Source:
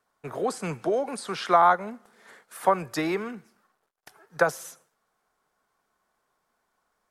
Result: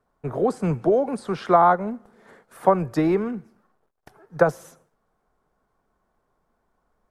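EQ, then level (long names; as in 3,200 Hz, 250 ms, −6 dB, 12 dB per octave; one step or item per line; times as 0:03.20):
tilt shelving filter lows +8 dB, about 1,200 Hz
low-shelf EQ 92 Hz +11 dB
0.0 dB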